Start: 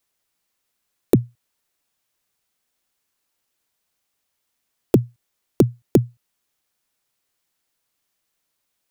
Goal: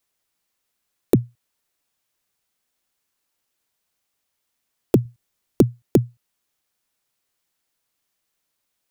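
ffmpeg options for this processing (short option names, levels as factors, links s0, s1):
-filter_complex "[0:a]asettb=1/sr,asplit=3[s0][s1][s2];[s0]atrim=end=5.054[s3];[s1]atrim=start=5.05:end=5.62,asetpts=PTS-STARTPTS,afade=t=in:d=0.004:c=qsin,afade=t=out:st=0.566:d=0.004:c=qsin,bass=f=250:g=5,treble=f=4000:g=1[s4];[s2]atrim=start=5.616[s5];[s3][s4]acrossfade=d=0.004:c1=hsin:c2=qsin[s6];[s6][s5]acrossfade=d=0.004:c1=qsin:c2=hsin,volume=0.891"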